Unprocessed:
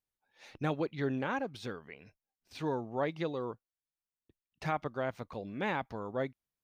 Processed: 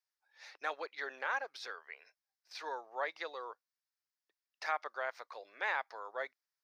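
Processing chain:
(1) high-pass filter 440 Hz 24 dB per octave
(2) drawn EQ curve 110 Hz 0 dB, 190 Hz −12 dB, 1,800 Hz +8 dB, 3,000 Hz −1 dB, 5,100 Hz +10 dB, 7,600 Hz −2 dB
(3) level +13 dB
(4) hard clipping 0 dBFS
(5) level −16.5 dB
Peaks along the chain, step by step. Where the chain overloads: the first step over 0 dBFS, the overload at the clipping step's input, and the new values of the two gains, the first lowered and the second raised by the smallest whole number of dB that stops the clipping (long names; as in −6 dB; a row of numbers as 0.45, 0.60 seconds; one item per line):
−21.0, −17.0, −4.0, −4.0, −20.5 dBFS
no step passes full scale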